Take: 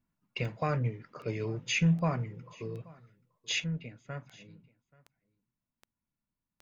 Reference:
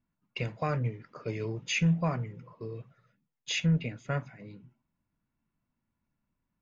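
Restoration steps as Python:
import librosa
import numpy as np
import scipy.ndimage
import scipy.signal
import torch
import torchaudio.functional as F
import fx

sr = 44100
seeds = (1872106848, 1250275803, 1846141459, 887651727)

y = fx.fix_declick_ar(x, sr, threshold=10.0)
y = fx.fix_echo_inverse(y, sr, delay_ms=831, level_db=-24.0)
y = fx.fix_level(y, sr, at_s=3.64, step_db=9.0)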